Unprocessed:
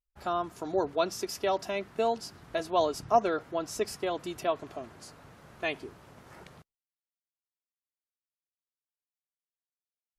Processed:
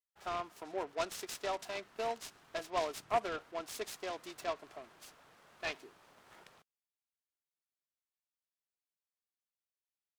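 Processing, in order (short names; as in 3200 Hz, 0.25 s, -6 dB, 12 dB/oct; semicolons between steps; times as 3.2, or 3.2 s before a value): HPF 840 Hz 6 dB/oct; noise-modulated delay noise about 1300 Hz, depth 0.047 ms; gain -4.5 dB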